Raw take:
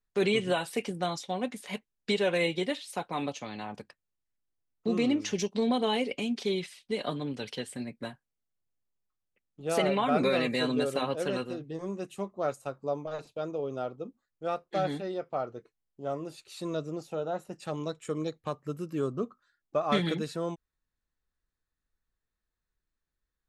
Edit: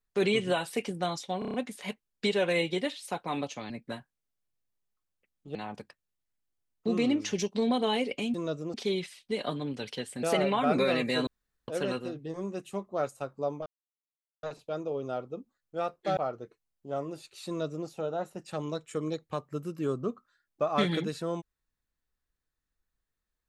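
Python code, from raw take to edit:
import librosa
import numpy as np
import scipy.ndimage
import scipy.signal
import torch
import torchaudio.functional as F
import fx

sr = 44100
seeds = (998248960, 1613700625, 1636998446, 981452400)

y = fx.edit(x, sr, fx.stutter(start_s=1.39, slice_s=0.03, count=6),
    fx.move(start_s=7.83, length_s=1.85, to_s=3.55),
    fx.room_tone_fill(start_s=10.72, length_s=0.41),
    fx.insert_silence(at_s=13.11, length_s=0.77),
    fx.cut(start_s=14.85, length_s=0.46),
    fx.duplicate(start_s=16.61, length_s=0.4, to_s=6.34), tone=tone)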